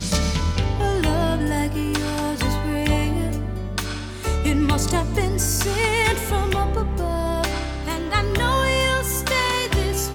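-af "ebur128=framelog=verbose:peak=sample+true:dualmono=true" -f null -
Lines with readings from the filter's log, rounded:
Integrated loudness:
  I:         -19.0 LUFS
  Threshold: -29.0 LUFS
Loudness range:
  LRA:         2.1 LU
  Threshold: -39.2 LUFS
  LRA low:   -20.5 LUFS
  LRA high:  -18.4 LUFS
Sample peak:
  Peak:       -6.1 dBFS
True peak:
  Peak:       -6.1 dBFS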